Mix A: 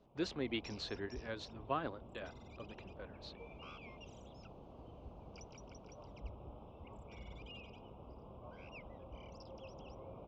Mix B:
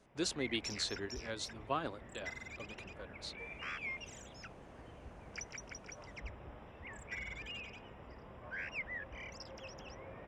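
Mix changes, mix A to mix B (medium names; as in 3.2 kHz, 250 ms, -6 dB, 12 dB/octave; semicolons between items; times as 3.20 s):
background: remove Butterworth band-stop 1.8 kHz, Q 1; master: remove distance through air 220 m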